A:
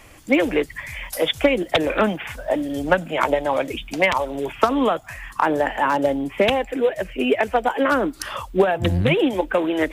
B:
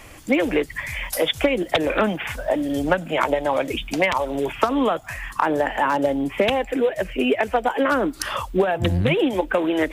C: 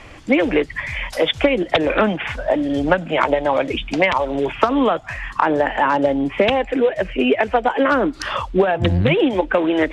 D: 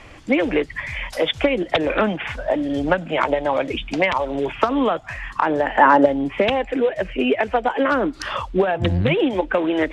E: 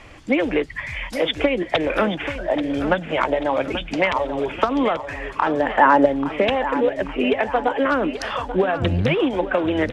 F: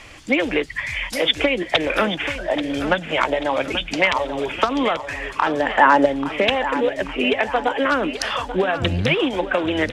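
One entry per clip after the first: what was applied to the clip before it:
compression 2:1, threshold -23 dBFS, peak gain reduction 7 dB; trim +3.5 dB
low-pass 4.5 kHz 12 dB/octave; trim +3.5 dB
time-frequency box 5.78–6.06 s, 210–2100 Hz +7 dB; trim -2.5 dB
feedback delay 835 ms, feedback 45%, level -11.5 dB; trim -1 dB
treble shelf 2.1 kHz +11 dB; trim -1.5 dB

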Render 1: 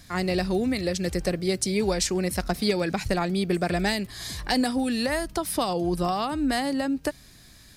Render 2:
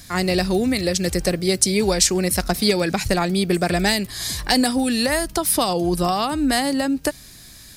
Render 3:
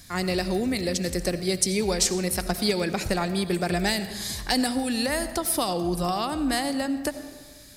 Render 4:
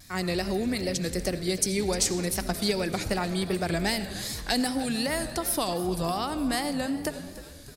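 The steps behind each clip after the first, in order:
treble shelf 4.9 kHz +8 dB; trim +5 dB
algorithmic reverb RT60 1.5 s, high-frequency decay 0.55×, pre-delay 45 ms, DRR 11 dB; trim -6 dB
vibrato 2.6 Hz 79 cents; frequency-shifting echo 306 ms, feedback 58%, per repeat -100 Hz, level -15.5 dB; trim -2.5 dB

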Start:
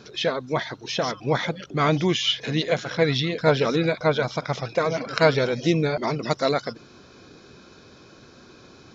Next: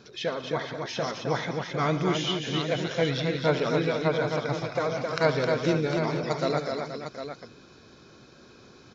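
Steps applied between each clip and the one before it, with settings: dynamic bell 3.4 kHz, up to -3 dB, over -36 dBFS, Q 1.2; on a send: multi-tap echo 71/116/190/264/475/754 ms -14/-18/-16/-5/-11/-9 dB; on the sum: trim -5.5 dB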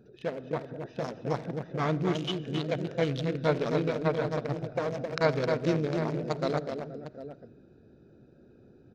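local Wiener filter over 41 samples; on a send at -20.5 dB: reverberation RT60 1.3 s, pre-delay 10 ms; on the sum: trim -1.5 dB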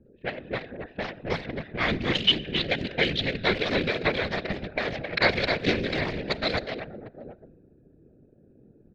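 whisper effect; level-controlled noise filter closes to 460 Hz, open at -25 dBFS; high-order bell 2.8 kHz +14.5 dB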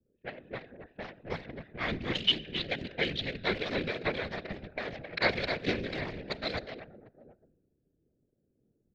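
three bands expanded up and down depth 40%; trim -7.5 dB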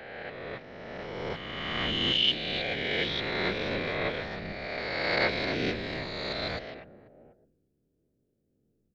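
reverse spectral sustain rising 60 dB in 2.12 s; trim -3.5 dB

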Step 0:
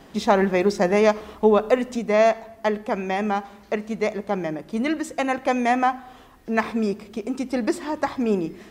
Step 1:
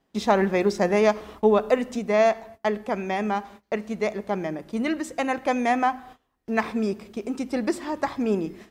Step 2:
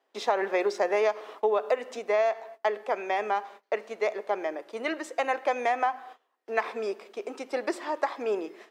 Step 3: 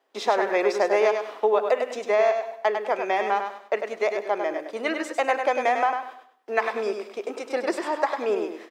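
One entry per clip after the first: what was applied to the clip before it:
gate -42 dBFS, range -22 dB; trim -2 dB
high-pass 410 Hz 24 dB/octave; treble shelf 5.8 kHz -10.5 dB; compression, threshold -22 dBFS, peak gain reduction 7.5 dB; trim +1 dB
feedback delay 100 ms, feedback 29%, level -6 dB; trim +3.5 dB

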